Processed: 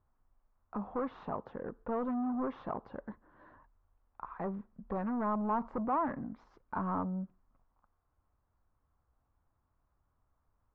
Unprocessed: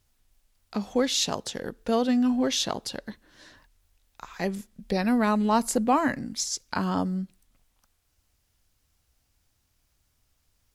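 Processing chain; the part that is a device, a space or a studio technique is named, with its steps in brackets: overdriven synthesiser ladder filter (soft clip -27 dBFS, distortion -8 dB; ladder low-pass 1300 Hz, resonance 50%); gain +4.5 dB

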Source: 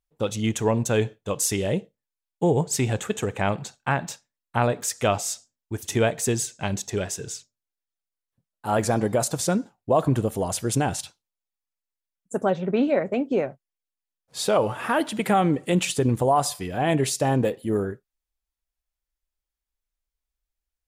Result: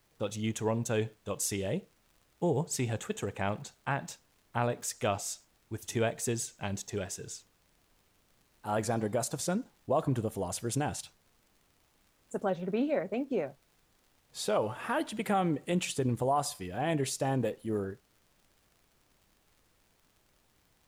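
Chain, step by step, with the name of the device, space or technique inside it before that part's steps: vinyl LP (crackle; pink noise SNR 35 dB); gain -8.5 dB

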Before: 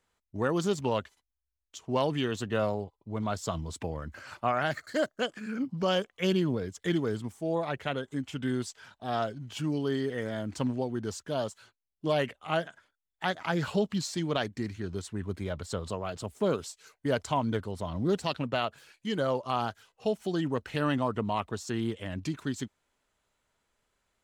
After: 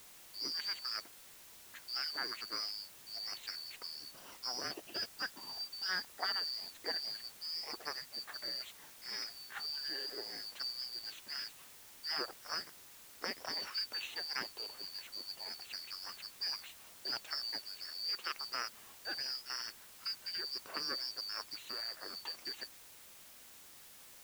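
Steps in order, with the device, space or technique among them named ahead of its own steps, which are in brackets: split-band scrambled radio (four-band scrambler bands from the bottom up 2341; BPF 390–2900 Hz; white noise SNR 13 dB); 17.93–18.37 HPF 150 Hz 12 dB/oct; gain -2.5 dB

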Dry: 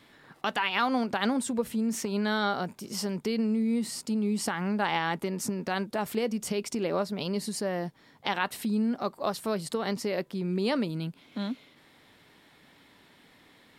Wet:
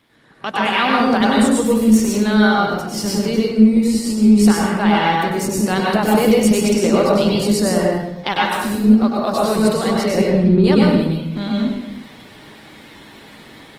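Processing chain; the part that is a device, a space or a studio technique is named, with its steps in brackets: 10.15–10.64 RIAA curve playback; speakerphone in a meeting room (reverb RT60 0.90 s, pre-delay 94 ms, DRR -3 dB; AGC gain up to 13.5 dB; gain -1 dB; Opus 20 kbps 48000 Hz)

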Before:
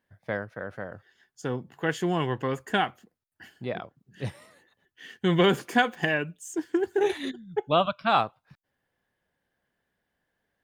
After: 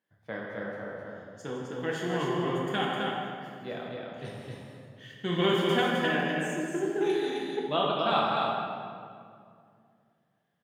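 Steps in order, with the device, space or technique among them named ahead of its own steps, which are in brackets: stadium PA (HPF 120 Hz; bell 3400 Hz +4 dB 0.32 oct; loudspeakers at several distances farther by 55 m -11 dB, 89 m -4 dB; reverb RT60 2.3 s, pre-delay 5 ms, DRR -2.5 dB); gain -8 dB

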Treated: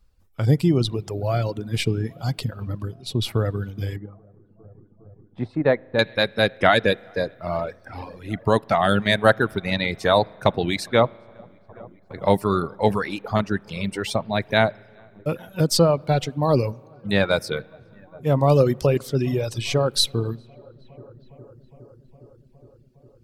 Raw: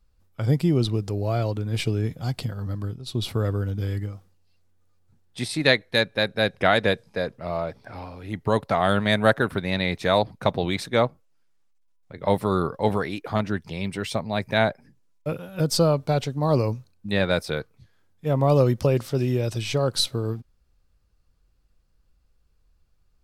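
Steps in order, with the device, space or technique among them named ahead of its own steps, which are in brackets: dub delay into a spring reverb (darkening echo 0.411 s, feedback 80%, low-pass 2200 Hz, level -21.5 dB; spring tank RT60 1.7 s, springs 35 ms, chirp 50 ms, DRR 15 dB); reverb removal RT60 1.4 s; 3.96–5.99 Chebyshev low-pass 920 Hz, order 2; gain +3.5 dB

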